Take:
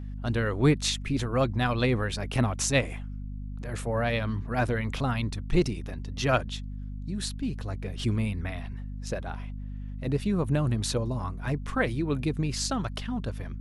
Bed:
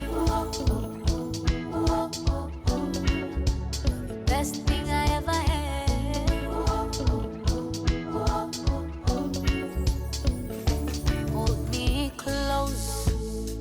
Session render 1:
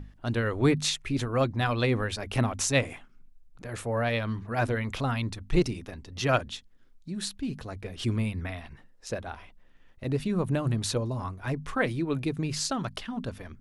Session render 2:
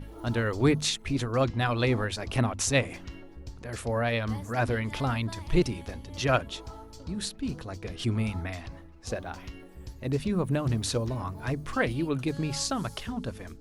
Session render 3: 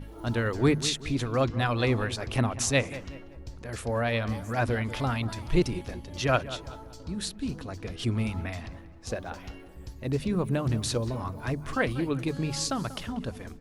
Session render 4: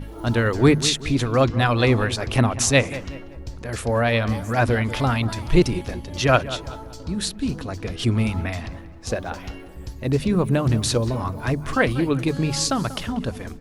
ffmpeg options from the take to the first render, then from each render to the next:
-af "bandreject=f=50:t=h:w=6,bandreject=f=100:t=h:w=6,bandreject=f=150:t=h:w=6,bandreject=f=200:t=h:w=6,bandreject=f=250:t=h:w=6"
-filter_complex "[1:a]volume=-17.5dB[a];[0:a][a]amix=inputs=2:normalize=0"
-filter_complex "[0:a]asplit=2[a][b];[b]adelay=189,lowpass=f=2.2k:p=1,volume=-14.5dB,asplit=2[c][d];[d]adelay=189,lowpass=f=2.2k:p=1,volume=0.43,asplit=2[e][f];[f]adelay=189,lowpass=f=2.2k:p=1,volume=0.43,asplit=2[g][h];[h]adelay=189,lowpass=f=2.2k:p=1,volume=0.43[i];[a][c][e][g][i]amix=inputs=5:normalize=0"
-af "volume=7.5dB"

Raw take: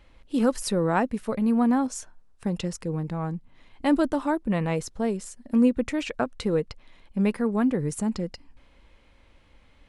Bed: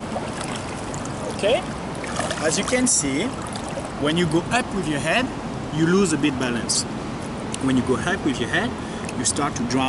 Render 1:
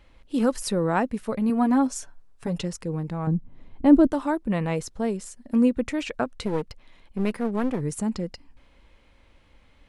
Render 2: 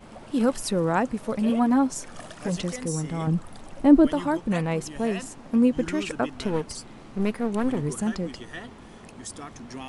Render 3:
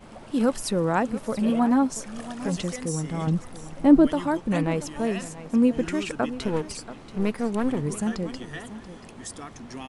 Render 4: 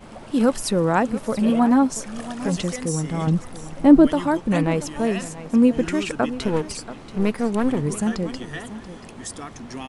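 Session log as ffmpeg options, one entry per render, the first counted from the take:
-filter_complex "[0:a]asettb=1/sr,asplit=3[a][b][c];[a]atrim=end=1.494[d];[b]atrim=start=1.49:end=2.63,asetpts=PTS-STARTPTS,afade=t=in:d=0.004:c=qsin,afade=t=out:st=1.136:d=0.004:c=qsin,aecho=1:1:7.1:0.65,atrim=end_sample=50274[e];[c]atrim=start=2.626[f];[d][e]acrossfade=d=0.004:c1=hsin:c2=qsin[g];[g][f]acrossfade=d=0.004:c1=qsin:c2=hsin,asettb=1/sr,asplit=3[h][i][j];[h]atrim=end=3.274[k];[i]atrim=start=3.27:end=4.07,asetpts=PTS-STARTPTS,afade=t=in:d=0.004:c=qsin,afade=t=out:st=0.796:d=0.004:c=qsin,tiltshelf=f=820:g=9.5[l];[j]atrim=start=4.066[m];[k][l]acrossfade=d=0.004:c1=hsin:c2=qsin[n];[n][m]acrossfade=d=0.004:c1=qsin:c2=hsin,asettb=1/sr,asplit=3[o][p][q];[o]atrim=end=6.424[r];[p]atrim=start=6.42:end=7.81,asetpts=PTS-STARTPTS,afade=t=in:d=0.004:c=qsin,afade=t=out:st=1.386:d=0.004:c=qsin,aeval=exprs='clip(val(0),-1,0.0266)':c=same[s];[q]atrim=start=7.806[t];[r][s]acrossfade=d=0.004:c1=hsin:c2=qsin[u];[u][t]acrossfade=d=0.004:c1=qsin:c2=hsin"
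-filter_complex "[1:a]volume=-17dB[a];[0:a][a]amix=inputs=2:normalize=0"
-af "aecho=1:1:683:0.178"
-af "volume=4dB,alimiter=limit=-3dB:level=0:latency=1"

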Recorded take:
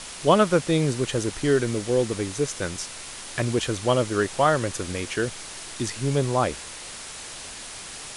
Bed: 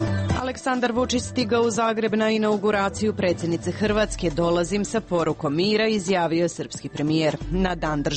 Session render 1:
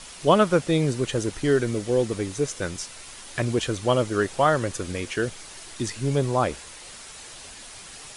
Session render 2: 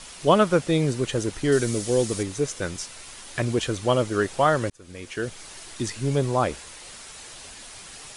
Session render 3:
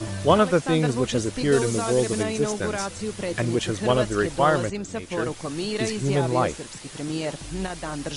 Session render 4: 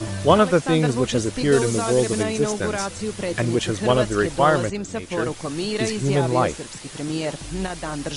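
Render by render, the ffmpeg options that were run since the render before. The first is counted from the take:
-af "afftdn=nr=6:nf=-39"
-filter_complex "[0:a]asettb=1/sr,asplit=3[a][b][c];[a]atrim=end=1.524[d];[b]atrim=start=1.52:end=2.23,asetpts=PTS-STARTPTS,afade=t=in:d=0.004:c=qsin,afade=t=out:st=0.706:d=0.004:c=qsin,bass=f=250:g=1,treble=f=4k:g=10[e];[c]atrim=start=2.226[f];[d][e]acrossfade=d=0.004:c1=hsin:c2=qsin[g];[g][f]acrossfade=d=0.004:c1=qsin:c2=hsin,asplit=2[h][i];[h]atrim=end=4.7,asetpts=PTS-STARTPTS,afade=t=out:st=4.696:d=0.004:c=hsin[j];[i]atrim=start=4.7,asetpts=PTS-STARTPTS,afade=t=in:d=0.76[k];[j][k]concat=n=2:v=0:a=1"
-filter_complex "[1:a]volume=-7.5dB[a];[0:a][a]amix=inputs=2:normalize=0"
-af "volume=2.5dB"

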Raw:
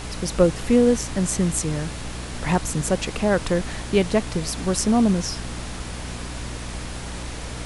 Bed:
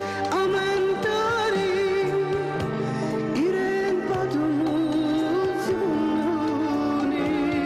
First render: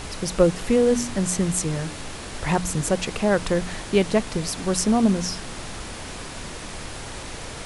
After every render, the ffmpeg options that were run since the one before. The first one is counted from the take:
-af "bandreject=f=60:t=h:w=4,bandreject=f=120:t=h:w=4,bandreject=f=180:t=h:w=4,bandreject=f=240:t=h:w=4,bandreject=f=300:t=h:w=4"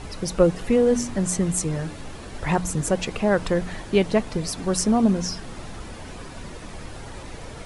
-af "afftdn=nr=9:nf=-36"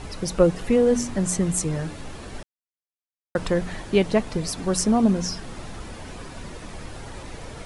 -filter_complex "[0:a]asplit=3[a][b][c];[a]atrim=end=2.43,asetpts=PTS-STARTPTS,afade=t=out:st=2.426:d=0.004:c=hsin[d];[b]atrim=start=2.43:end=3.35,asetpts=PTS-STARTPTS,volume=0[e];[c]atrim=start=3.35,asetpts=PTS-STARTPTS,afade=t=in:d=0.004:c=hsin[f];[d][e][f]concat=n=3:v=0:a=1"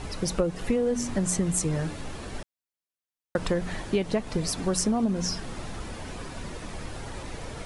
-af "acompressor=threshold=-21dB:ratio=12"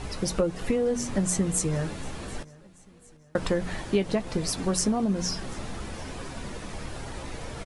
-filter_complex "[0:a]asplit=2[a][b];[b]adelay=15,volume=-11dB[c];[a][c]amix=inputs=2:normalize=0,aecho=1:1:739|1478|2217:0.075|0.0337|0.0152"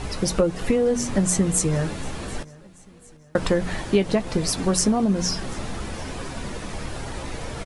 -af "volume=5dB"

